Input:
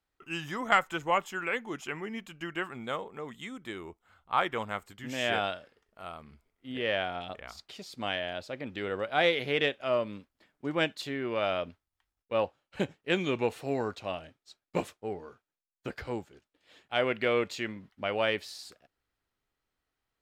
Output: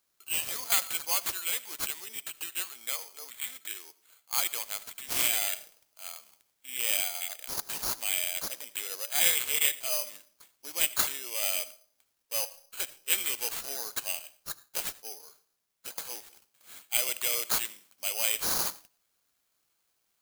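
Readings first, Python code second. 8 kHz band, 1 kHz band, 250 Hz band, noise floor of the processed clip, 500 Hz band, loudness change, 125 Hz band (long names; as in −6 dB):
+22.5 dB, −9.5 dB, −17.0 dB, −76 dBFS, −14.0 dB, +3.0 dB, below −10 dB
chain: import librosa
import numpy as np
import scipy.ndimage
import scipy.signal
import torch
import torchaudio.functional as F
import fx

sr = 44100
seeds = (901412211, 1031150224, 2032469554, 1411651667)

p1 = scipy.signal.sosfilt(scipy.signal.butter(2, 680.0, 'highpass', fs=sr, output='sos'), x)
p2 = fx.high_shelf_res(p1, sr, hz=2700.0, db=13.5, q=1.5)
p3 = fx.notch(p2, sr, hz=3600.0, q=13.0)
p4 = (np.mod(10.0 ** (21.5 / 20.0) * p3 + 1.0, 2.0) - 1.0) / 10.0 ** (21.5 / 20.0)
p5 = p3 + (p4 * librosa.db_to_amplitude(-8.5))
p6 = fx.rev_freeverb(p5, sr, rt60_s=0.53, hf_ratio=0.6, predelay_ms=40, drr_db=17.5)
p7 = (np.kron(p6[::8], np.eye(8)[0]) * 8)[:len(p6)]
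y = p7 * librosa.db_to_amplitude(-10.5)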